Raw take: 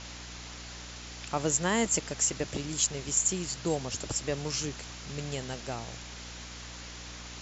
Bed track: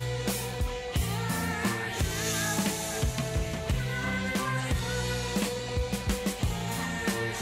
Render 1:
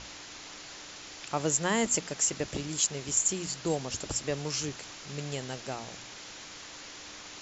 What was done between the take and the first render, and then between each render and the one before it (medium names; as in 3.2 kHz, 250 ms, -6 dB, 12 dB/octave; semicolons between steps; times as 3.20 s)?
hum notches 60/120/180/240 Hz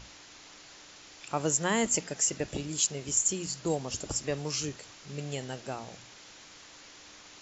noise print and reduce 6 dB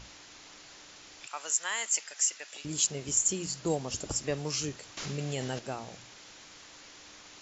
1.27–2.65 s: high-pass 1.3 kHz; 4.97–5.59 s: level flattener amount 70%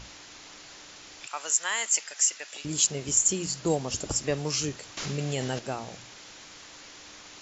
trim +4 dB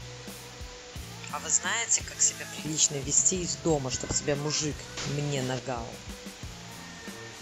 add bed track -13 dB